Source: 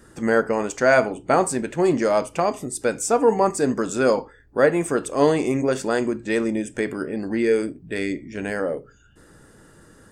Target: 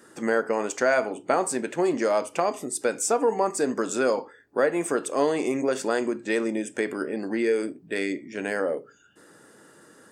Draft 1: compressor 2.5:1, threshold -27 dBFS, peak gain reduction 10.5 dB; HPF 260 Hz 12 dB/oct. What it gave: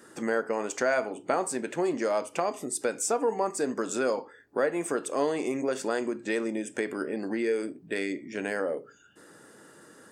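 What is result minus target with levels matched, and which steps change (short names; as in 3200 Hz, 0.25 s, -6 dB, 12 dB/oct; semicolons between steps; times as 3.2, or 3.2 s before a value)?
compressor: peak gain reduction +4 dB
change: compressor 2.5:1, threshold -20 dBFS, peak gain reduction 6.5 dB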